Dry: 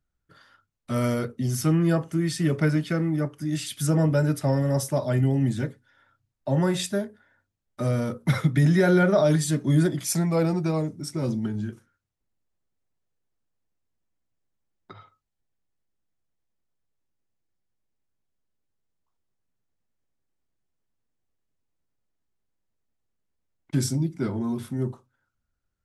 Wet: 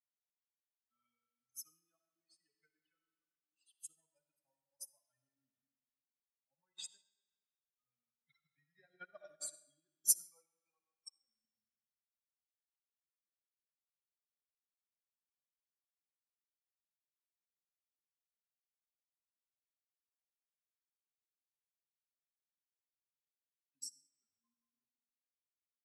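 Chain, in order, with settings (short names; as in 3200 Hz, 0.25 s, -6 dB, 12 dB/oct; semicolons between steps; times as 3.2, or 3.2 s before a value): per-bin expansion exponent 3; differentiator; in parallel at +2.5 dB: level quantiser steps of 21 dB; on the sum: reverb RT60 1.7 s, pre-delay 20 ms, DRR 4 dB; upward expander 2.5:1, over -49 dBFS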